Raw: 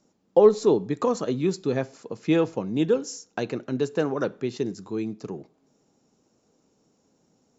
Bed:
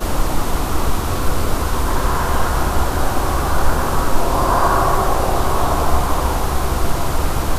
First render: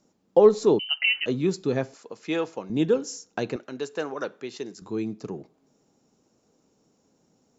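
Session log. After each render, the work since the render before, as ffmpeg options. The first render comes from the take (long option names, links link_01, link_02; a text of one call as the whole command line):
ffmpeg -i in.wav -filter_complex "[0:a]asettb=1/sr,asplit=3[link_01][link_02][link_03];[link_01]atrim=end=0.794[link_04];[link_02]atrim=start=0.79:end=1.26,asetpts=PTS-STARTPTS,afade=type=in:duration=0.004:curve=qsin,afade=type=out:start_time=0.466:duration=0.004:curve=qsin,lowpass=frequency=2700:width_type=q:width=0.5098,lowpass=frequency=2700:width_type=q:width=0.6013,lowpass=frequency=2700:width_type=q:width=0.9,lowpass=frequency=2700:width_type=q:width=2.563,afreqshift=-3200[link_05];[link_03]atrim=start=1.256[link_06];[link_04][link_05]acrossfade=duration=0.004:curve1=hsin:curve2=qsin[link_07];[link_07][link_06]acrossfade=duration=0.004:curve1=qsin:curve2=hsin,asettb=1/sr,asplit=3[link_08][link_09][link_10];[link_08]atrim=end=1.944[link_11];[link_09]atrim=start=1.94:end=2.7,asetpts=PTS-STARTPTS,afade=type=in:duration=0.004:curve=qsin,afade=type=out:start_time=0.756:duration=0.004:curve=qsin,highpass=frequency=660:poles=1[link_12];[link_10]atrim=start=2.696[link_13];[link_11][link_12]acrossfade=duration=0.004:curve1=hsin:curve2=qsin[link_14];[link_14][link_13]acrossfade=duration=0.004:curve1=qsin:curve2=hsin,asettb=1/sr,asplit=3[link_15][link_16][link_17];[link_15]atrim=end=3.564[link_18];[link_16]atrim=start=3.56:end=4.82,asetpts=PTS-STARTPTS,afade=type=in:duration=0.004:curve=qsin,afade=type=out:start_time=1.256:duration=0.004:curve=qsin,highpass=frequency=740:poles=1[link_19];[link_17]atrim=start=4.816[link_20];[link_18][link_19]acrossfade=duration=0.004:curve1=hsin:curve2=qsin[link_21];[link_21][link_20]acrossfade=duration=0.004:curve1=qsin:curve2=hsin" out.wav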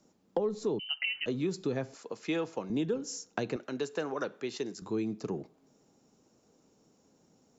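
ffmpeg -i in.wav -filter_complex "[0:a]acrossover=split=230[link_01][link_02];[link_01]alimiter=level_in=11dB:limit=-24dB:level=0:latency=1,volume=-11dB[link_03];[link_02]acompressor=threshold=-30dB:ratio=8[link_04];[link_03][link_04]amix=inputs=2:normalize=0" out.wav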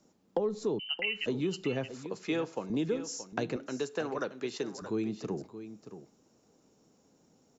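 ffmpeg -i in.wav -af "aecho=1:1:625:0.251" out.wav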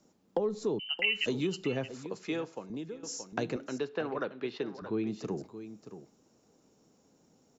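ffmpeg -i in.wav -filter_complex "[0:a]asplit=3[link_01][link_02][link_03];[link_01]afade=type=out:start_time=0.98:duration=0.02[link_04];[link_02]highshelf=frequency=3300:gain=10.5,afade=type=in:start_time=0.98:duration=0.02,afade=type=out:start_time=1.46:duration=0.02[link_05];[link_03]afade=type=in:start_time=1.46:duration=0.02[link_06];[link_04][link_05][link_06]amix=inputs=3:normalize=0,asettb=1/sr,asplit=3[link_07][link_08][link_09];[link_07]atrim=end=3.784[link_10];[link_08]atrim=start=3.78:end=5.07,asetpts=PTS-STARTPTS,afade=type=in:duration=0.004:curve=qsin,afade=type=out:start_time=1.286:duration=0.004:curve=qsin,lowpass=frequency=3900:width=0.5412,lowpass=frequency=3900:width=1.3066[link_11];[link_09]atrim=start=5.066[link_12];[link_10][link_11]acrossfade=duration=0.004:curve1=hsin:curve2=qsin[link_13];[link_13][link_12]acrossfade=duration=0.004:curve1=qsin:curve2=hsin,asplit=2[link_14][link_15];[link_14]atrim=end=3.03,asetpts=PTS-STARTPTS,afade=type=out:start_time=2.02:duration=1.01:silence=0.199526[link_16];[link_15]atrim=start=3.03,asetpts=PTS-STARTPTS,afade=type=in:duration=0.004:curve=hsin:silence=0.199526[link_17];[link_16][link_17]concat=n=2:v=0:a=1" out.wav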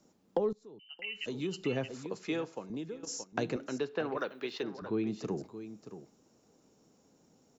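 ffmpeg -i in.wav -filter_complex "[0:a]asettb=1/sr,asplit=3[link_01][link_02][link_03];[link_01]atrim=end=3.054[link_04];[link_02]atrim=start=3.05:end=3.47,asetpts=PTS-STARTPTS,afade=type=in:duration=0.004:curve=qsin,afade=type=out:start_time=0.416:duration=0.004:curve=qsin,agate=range=-9dB:threshold=-45dB:ratio=16:release=100:detection=peak[link_05];[link_03]atrim=start=3.466[link_06];[link_04][link_05]acrossfade=duration=0.004:curve1=hsin:curve2=qsin[link_07];[link_07][link_06]acrossfade=duration=0.004:curve1=qsin:curve2=hsin,asettb=1/sr,asplit=3[link_08][link_09][link_10];[link_08]atrim=end=4.174[link_11];[link_09]atrim=start=4.17:end=4.63,asetpts=PTS-STARTPTS,afade=type=in:duration=0.004:curve=qsin,afade=type=out:start_time=0.456:duration=0.004:curve=qsin,aemphasis=mode=production:type=bsi[link_12];[link_10]atrim=start=4.626[link_13];[link_11][link_12]acrossfade=duration=0.004:curve1=hsin:curve2=qsin[link_14];[link_14][link_13]acrossfade=duration=0.004:curve1=qsin:curve2=hsin,asplit=2[link_15][link_16];[link_15]atrim=end=0.53,asetpts=PTS-STARTPTS,afade=type=out:start_time=0.526:duration=0.004:curve=hsin:silence=0.0794328[link_17];[link_16]atrim=start=0.53,asetpts=PTS-STARTPTS,afade=type=in:duration=1.2:curve=qua:silence=0.0794328[link_18];[link_17][link_18]concat=n=2:v=0:a=1" out.wav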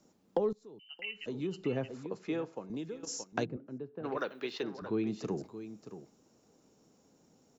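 ffmpeg -i in.wav -filter_complex "[0:a]asettb=1/sr,asplit=3[link_01][link_02][link_03];[link_01]atrim=end=1.114[link_04];[link_02]atrim=start=1.11:end=2.7,asetpts=PTS-STARTPTS,afade=type=in:duration=0.004:curve=qsin,afade=type=out:start_time=1.586:duration=0.004:curve=qsin,highshelf=frequency=2300:gain=-10.5[link_05];[link_03]atrim=start=2.696[link_06];[link_04][link_05]acrossfade=duration=0.004:curve1=hsin:curve2=qsin[link_07];[link_07][link_06]acrossfade=duration=0.004:curve1=qsin:curve2=hsin,asplit=3[link_08][link_09][link_10];[link_08]afade=type=out:start_time=3.44:duration=0.02[link_11];[link_09]bandpass=frequency=100:width_type=q:width=0.67,afade=type=in:start_time=3.44:duration=0.02,afade=type=out:start_time=4.03:duration=0.02[link_12];[link_10]afade=type=in:start_time=4.03:duration=0.02[link_13];[link_11][link_12][link_13]amix=inputs=3:normalize=0" out.wav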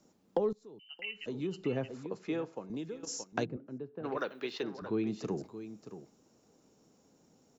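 ffmpeg -i in.wav -af anull out.wav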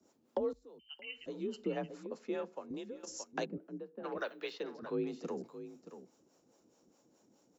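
ffmpeg -i in.wav -filter_complex "[0:a]afreqshift=45,acrossover=split=450[link_01][link_02];[link_01]aeval=exprs='val(0)*(1-0.7/2+0.7/2*cos(2*PI*4.8*n/s))':channel_layout=same[link_03];[link_02]aeval=exprs='val(0)*(1-0.7/2-0.7/2*cos(2*PI*4.8*n/s))':channel_layout=same[link_04];[link_03][link_04]amix=inputs=2:normalize=0" out.wav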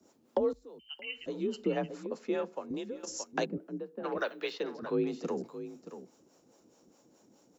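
ffmpeg -i in.wav -af "volume=5.5dB" out.wav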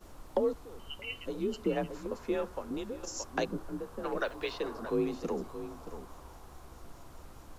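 ffmpeg -i in.wav -i bed.wav -filter_complex "[1:a]volume=-32.5dB[link_01];[0:a][link_01]amix=inputs=2:normalize=0" out.wav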